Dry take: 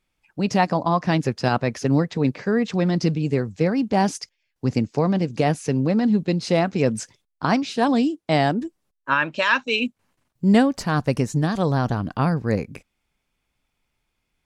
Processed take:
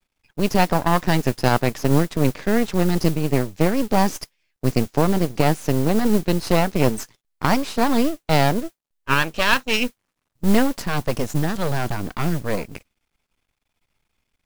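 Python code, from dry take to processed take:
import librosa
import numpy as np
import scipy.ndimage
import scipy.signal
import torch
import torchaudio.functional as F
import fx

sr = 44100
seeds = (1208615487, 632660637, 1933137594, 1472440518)

y = np.maximum(x, 0.0)
y = fx.mod_noise(y, sr, seeds[0], snr_db=20)
y = y * 10.0 ** (4.5 / 20.0)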